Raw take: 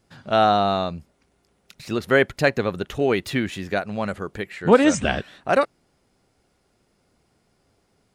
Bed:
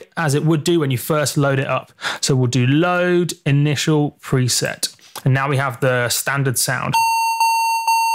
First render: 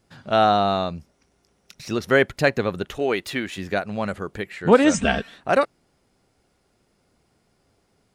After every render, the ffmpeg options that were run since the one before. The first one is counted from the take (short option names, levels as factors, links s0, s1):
-filter_complex "[0:a]asettb=1/sr,asplit=3[s0][s1][s2];[s0]atrim=end=0.954[s3];[s1]atrim=start=0.95:end=2.23,asetpts=PTS-STARTPTS,afade=t=in:d=0.004:c=qsin,afade=t=out:st=1.276:d=0.004:c=qsin,equalizer=f=5700:w=5.5:g=9[s4];[s2]atrim=start=2.226[s5];[s3][s4]acrossfade=d=0.004:c1=hsin:c2=qsin[s6];[s6][s5]acrossfade=d=0.004:c1=qsin:c2=hsin,asettb=1/sr,asplit=3[s7][s8][s9];[s7]atrim=end=2.924[s10];[s8]atrim=start=2.92:end=3.58,asetpts=PTS-STARTPTS,afade=t=in:d=0.004:c=qsin,afade=t=out:st=0.656:d=0.004:c=qsin,equalizer=f=110:w=0.55:g=-10[s11];[s9]atrim=start=3.576[s12];[s10][s11]acrossfade=d=0.004:c1=hsin:c2=qsin[s13];[s13][s12]acrossfade=d=0.004:c1=qsin:c2=hsin,asettb=1/sr,asplit=3[s14][s15][s16];[s14]atrim=end=4.944[s17];[s15]atrim=start=4.94:end=5.35,asetpts=PTS-STARTPTS,afade=t=in:d=0.004:c=qsin,afade=t=out:st=0.406:d=0.004:c=qsin,aecho=1:1:4.4:0.65,atrim=end_sample=18081[s18];[s16]atrim=start=5.346[s19];[s17][s18]acrossfade=d=0.004:c1=hsin:c2=qsin[s20];[s20][s19]acrossfade=d=0.004:c1=qsin:c2=hsin"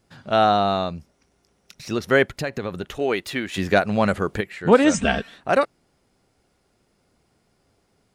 -filter_complex "[0:a]asettb=1/sr,asplit=3[s0][s1][s2];[s0]atrim=end=2.284[s3];[s1]atrim=start=2.28:end=2.83,asetpts=PTS-STARTPTS,afade=t=in:d=0.004:c=qsin,afade=t=out:st=0.546:d=0.004:c=qsin,acompressor=threshold=0.0708:ratio=4:attack=3.2:release=140:knee=1:detection=peak[s4];[s2]atrim=start=2.826[s5];[s3][s4]acrossfade=d=0.004:c1=hsin:c2=qsin[s6];[s6][s5]acrossfade=d=0.004:c1=qsin:c2=hsin,asettb=1/sr,asplit=3[s7][s8][s9];[s7]atrim=end=3.544[s10];[s8]atrim=start=3.54:end=4.41,asetpts=PTS-STARTPTS,afade=t=in:d=0.004:c=qsin,afade=t=out:st=0.866:d=0.004:c=qsin,acontrast=81[s11];[s9]atrim=start=4.406[s12];[s10][s11]acrossfade=d=0.004:c1=hsin:c2=qsin[s13];[s13][s12]acrossfade=d=0.004:c1=qsin:c2=hsin"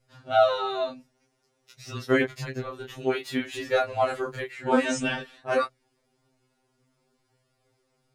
-af "flanger=delay=17:depth=7.5:speed=0.53,afftfilt=real='re*2.45*eq(mod(b,6),0)':imag='im*2.45*eq(mod(b,6),0)':win_size=2048:overlap=0.75"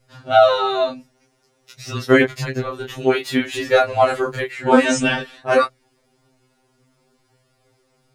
-af "volume=2.82,alimiter=limit=0.891:level=0:latency=1"